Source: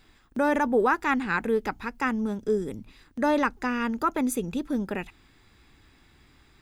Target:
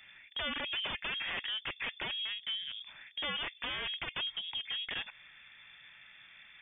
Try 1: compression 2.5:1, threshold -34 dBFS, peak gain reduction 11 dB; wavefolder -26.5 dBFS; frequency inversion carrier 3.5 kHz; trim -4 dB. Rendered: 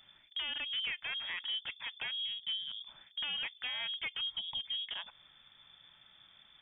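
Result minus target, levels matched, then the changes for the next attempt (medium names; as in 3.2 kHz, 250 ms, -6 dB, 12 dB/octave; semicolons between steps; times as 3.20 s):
1 kHz band -7.0 dB
add after compression: high-order bell 1.1 kHz +14 dB 1.7 oct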